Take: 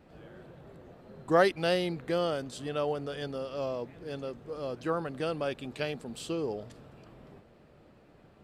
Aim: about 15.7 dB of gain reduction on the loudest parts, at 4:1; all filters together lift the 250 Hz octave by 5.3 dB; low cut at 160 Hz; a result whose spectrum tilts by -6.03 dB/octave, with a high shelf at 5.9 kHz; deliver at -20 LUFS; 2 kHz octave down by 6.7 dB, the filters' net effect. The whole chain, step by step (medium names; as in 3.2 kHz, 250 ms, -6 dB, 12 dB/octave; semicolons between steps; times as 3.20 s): high-pass 160 Hz; peaking EQ 250 Hz +9 dB; peaking EQ 2 kHz -9 dB; treble shelf 5.9 kHz -4.5 dB; compression 4:1, threshold -36 dBFS; trim +20.5 dB